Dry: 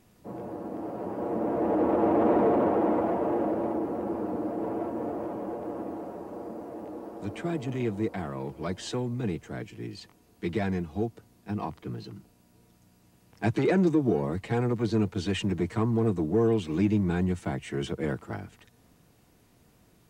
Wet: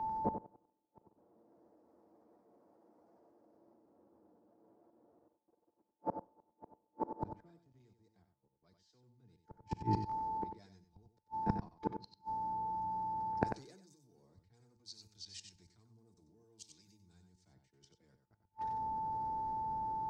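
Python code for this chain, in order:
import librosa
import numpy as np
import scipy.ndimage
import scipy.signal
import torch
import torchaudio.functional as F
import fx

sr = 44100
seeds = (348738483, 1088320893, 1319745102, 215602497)

y = fx.env_lowpass(x, sr, base_hz=1000.0, full_db=-20.0)
y = fx.high_shelf_res(y, sr, hz=3800.0, db=10.0, q=3.0)
y = fx.level_steps(y, sr, step_db=17)
y = y + 10.0 ** (-49.0 / 20.0) * np.sin(2.0 * np.pi * 880.0 * np.arange(len(y)) / sr)
y = fx.gate_flip(y, sr, shuts_db=-40.0, range_db=-35)
y = y + 10.0 ** (-7.0 / 20.0) * np.pad(y, (int(94 * sr / 1000.0), 0))[:len(y)]
y = fx.rev_schroeder(y, sr, rt60_s=0.49, comb_ms=32, drr_db=19.5)
y = fx.band_widen(y, sr, depth_pct=100)
y = y * librosa.db_to_amplitude(14.0)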